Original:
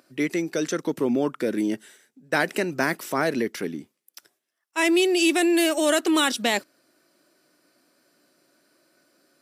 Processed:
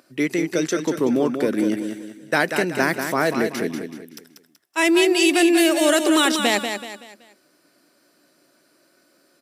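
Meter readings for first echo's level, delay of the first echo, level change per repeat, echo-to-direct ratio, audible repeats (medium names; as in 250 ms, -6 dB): -7.0 dB, 189 ms, -8.5 dB, -6.5 dB, 4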